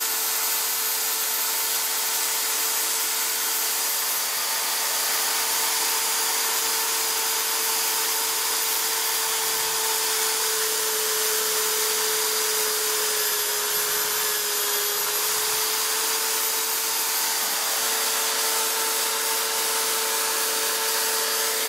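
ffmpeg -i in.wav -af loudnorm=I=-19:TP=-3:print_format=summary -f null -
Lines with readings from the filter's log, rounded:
Input Integrated:    -21.4 LUFS
Input True Peak:      -9.2 dBTP
Input LRA:             0.5 LU
Input Threshold:     -31.4 LUFS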